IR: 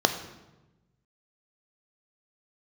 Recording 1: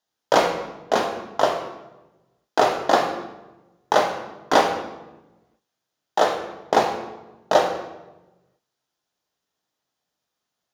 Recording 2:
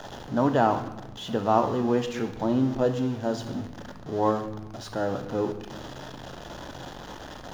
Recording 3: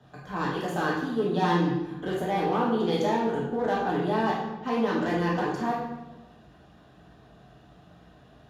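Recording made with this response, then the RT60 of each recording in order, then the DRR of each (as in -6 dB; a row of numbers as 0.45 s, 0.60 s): 2; 1.1 s, 1.1 s, 1.1 s; 2.0 dB, 7.0 dB, -5.5 dB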